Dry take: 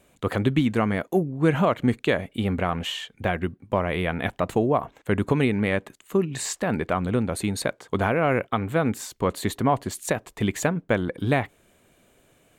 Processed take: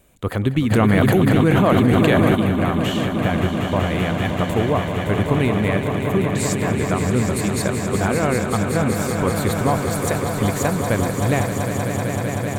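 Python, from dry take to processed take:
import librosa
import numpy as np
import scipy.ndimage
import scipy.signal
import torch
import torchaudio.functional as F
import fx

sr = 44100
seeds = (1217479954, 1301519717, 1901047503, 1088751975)

y = fx.high_shelf(x, sr, hz=11000.0, db=10.5)
y = fx.echo_swell(y, sr, ms=191, loudest=5, wet_db=-8.5)
y = fx.quant_float(y, sr, bits=8, at=(6.72, 7.48))
y = fx.low_shelf(y, sr, hz=92.0, db=11.5)
y = fx.env_flatten(y, sr, amount_pct=100, at=(0.7, 2.34), fade=0.02)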